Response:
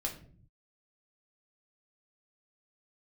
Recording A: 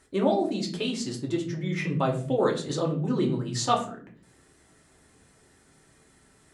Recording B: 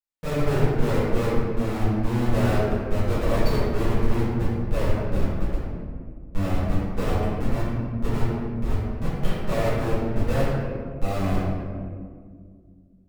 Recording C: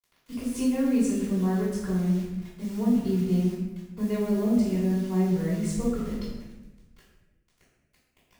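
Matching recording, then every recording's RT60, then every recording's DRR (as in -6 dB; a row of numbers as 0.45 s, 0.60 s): A; 0.50 s, 2.0 s, 1.1 s; -0.5 dB, -12.5 dB, -10.5 dB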